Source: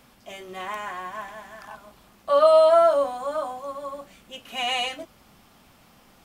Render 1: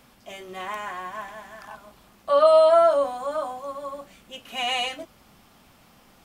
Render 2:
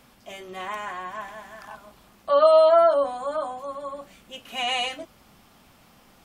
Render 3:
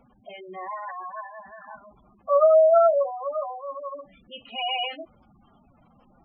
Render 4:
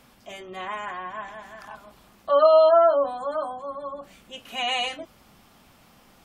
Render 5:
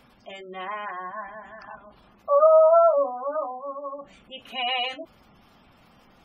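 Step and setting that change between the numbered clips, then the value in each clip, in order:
spectral gate, under each frame's peak: -60 dB, -45 dB, -10 dB, -35 dB, -20 dB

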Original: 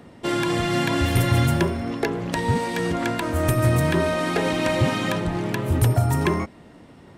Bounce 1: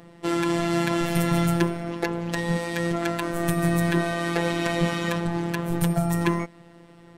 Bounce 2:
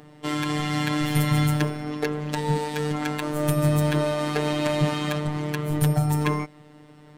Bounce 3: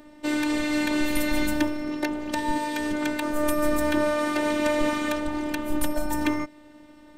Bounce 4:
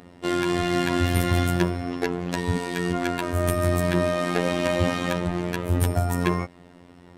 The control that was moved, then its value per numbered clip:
robot voice, frequency: 170 Hz, 150 Hz, 300 Hz, 88 Hz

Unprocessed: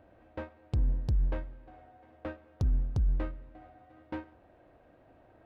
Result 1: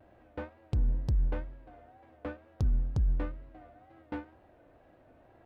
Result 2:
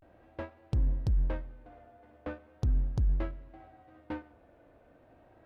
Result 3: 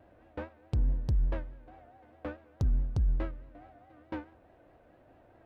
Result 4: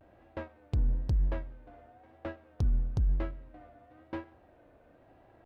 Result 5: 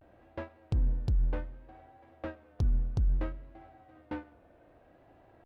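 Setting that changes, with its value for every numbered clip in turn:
vibrato, rate: 2.1 Hz, 0.38 Hz, 4.7 Hz, 1 Hz, 0.63 Hz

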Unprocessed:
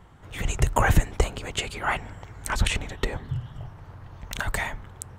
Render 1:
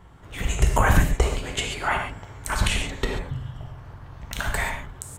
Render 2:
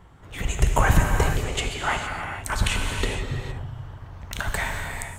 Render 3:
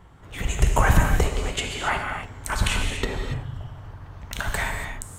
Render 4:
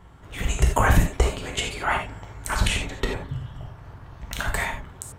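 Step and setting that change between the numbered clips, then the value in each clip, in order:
gated-style reverb, gate: 160 ms, 490 ms, 310 ms, 110 ms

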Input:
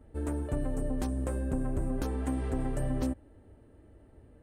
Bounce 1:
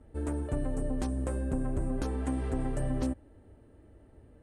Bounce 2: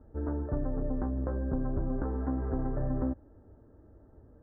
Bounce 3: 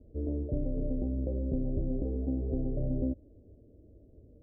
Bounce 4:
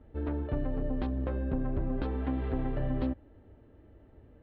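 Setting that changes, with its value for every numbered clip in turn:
steep low-pass, frequency: 11 kHz, 1.6 kHz, 620 Hz, 4 kHz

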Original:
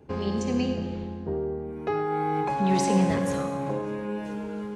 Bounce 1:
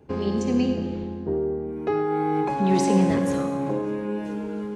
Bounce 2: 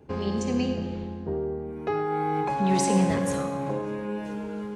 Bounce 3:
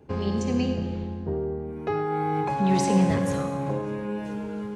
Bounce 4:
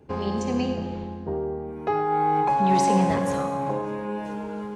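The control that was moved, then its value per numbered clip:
dynamic bell, frequency: 310 Hz, 8.9 kHz, 110 Hz, 870 Hz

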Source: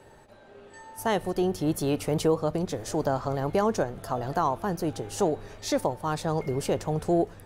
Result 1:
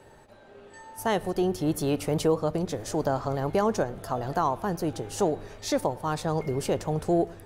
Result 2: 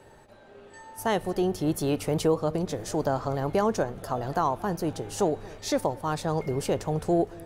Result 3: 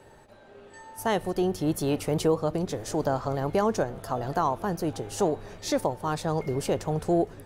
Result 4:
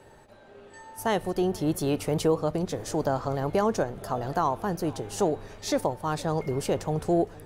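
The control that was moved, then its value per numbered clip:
tape echo, time: 107 ms, 226 ms, 825 ms, 465 ms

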